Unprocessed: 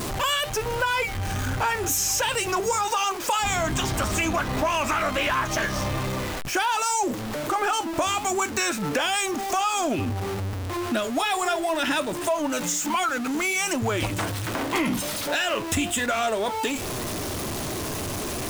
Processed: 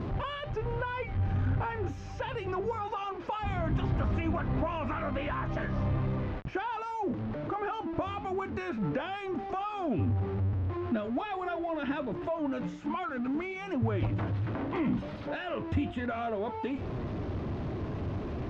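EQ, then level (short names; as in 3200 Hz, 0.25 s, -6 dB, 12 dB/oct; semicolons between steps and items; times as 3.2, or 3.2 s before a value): HPF 110 Hz 6 dB/oct; air absorption 250 m; RIAA curve playback; -9.0 dB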